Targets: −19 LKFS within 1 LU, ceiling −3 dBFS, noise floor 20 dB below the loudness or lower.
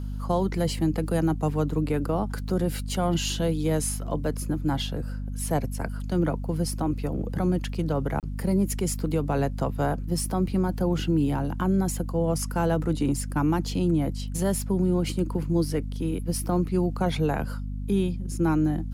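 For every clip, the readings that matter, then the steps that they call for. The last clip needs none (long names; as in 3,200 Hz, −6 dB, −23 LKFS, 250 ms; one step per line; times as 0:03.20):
number of dropouts 1; longest dropout 28 ms; mains hum 50 Hz; hum harmonics up to 250 Hz; level of the hum −29 dBFS; integrated loudness −27.0 LKFS; sample peak −13.5 dBFS; target loudness −19.0 LKFS
→ repair the gap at 0:08.20, 28 ms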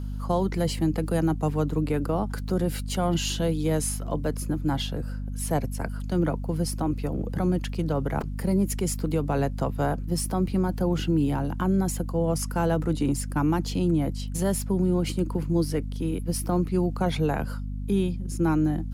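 number of dropouts 0; mains hum 50 Hz; hum harmonics up to 250 Hz; level of the hum −29 dBFS
→ hum removal 50 Hz, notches 5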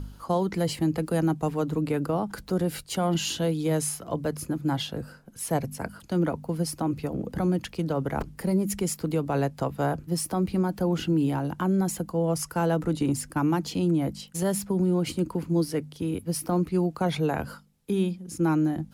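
mains hum none found; integrated loudness −27.5 LKFS; sample peak −15.0 dBFS; target loudness −19.0 LKFS
→ level +8.5 dB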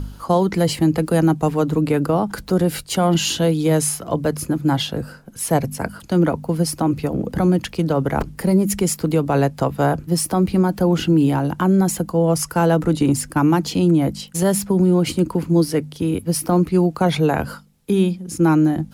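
integrated loudness −19.0 LKFS; sample peak −6.5 dBFS; background noise floor −42 dBFS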